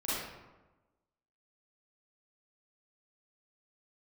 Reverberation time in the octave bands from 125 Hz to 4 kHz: 1.2, 1.2, 1.1, 1.1, 0.90, 0.65 seconds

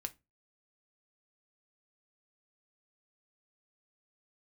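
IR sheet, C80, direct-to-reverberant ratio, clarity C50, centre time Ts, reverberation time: 31.5 dB, 7.0 dB, 22.0 dB, 4 ms, 0.25 s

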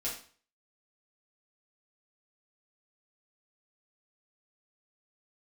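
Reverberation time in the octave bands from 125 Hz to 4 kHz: 0.50, 0.45, 0.45, 0.45, 0.40, 0.40 seconds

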